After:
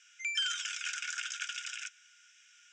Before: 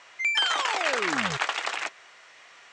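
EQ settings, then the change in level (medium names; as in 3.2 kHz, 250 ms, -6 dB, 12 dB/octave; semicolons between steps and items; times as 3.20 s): rippled Chebyshev high-pass 1.4 kHz, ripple 6 dB; treble shelf 4.6 kHz +5.5 dB; static phaser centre 2.9 kHz, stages 8; -3.0 dB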